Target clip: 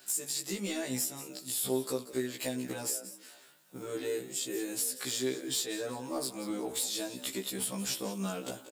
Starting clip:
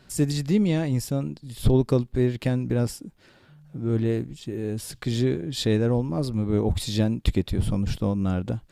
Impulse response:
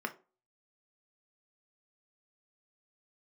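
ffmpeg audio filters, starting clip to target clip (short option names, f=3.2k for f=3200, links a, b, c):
-filter_complex "[0:a]highpass=220,aemphasis=mode=production:type=riaa,agate=range=-8dB:threshold=-48dB:ratio=16:detection=peak,equalizer=f=7.5k:w=3:g=5.5,acompressor=threshold=-37dB:ratio=5,asoftclip=type=hard:threshold=-30.5dB,asplit=4[a][b][c][d];[b]adelay=182,afreqshift=37,volume=-14dB[e];[c]adelay=364,afreqshift=74,volume=-23.6dB[f];[d]adelay=546,afreqshift=111,volume=-33.3dB[g];[a][e][f][g]amix=inputs=4:normalize=0,asplit=2[h][i];[1:a]atrim=start_sample=2205,adelay=64[j];[i][j]afir=irnorm=-1:irlink=0,volume=-20dB[k];[h][k]amix=inputs=2:normalize=0,afftfilt=real='re*1.73*eq(mod(b,3),0)':imag='im*1.73*eq(mod(b,3),0)':win_size=2048:overlap=0.75,volume=7dB"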